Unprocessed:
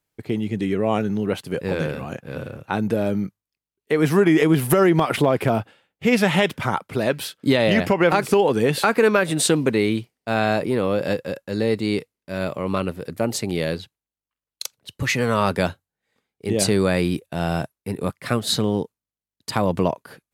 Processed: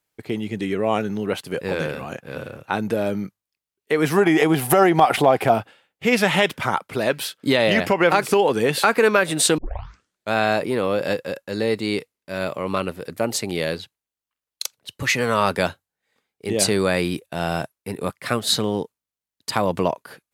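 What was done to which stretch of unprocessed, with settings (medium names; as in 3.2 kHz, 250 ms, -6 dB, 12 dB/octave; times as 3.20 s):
4.17–5.54 s: peaking EQ 760 Hz +12.5 dB 0.26 oct
9.58 s: tape start 0.75 s
whole clip: bass shelf 320 Hz -8 dB; trim +2.5 dB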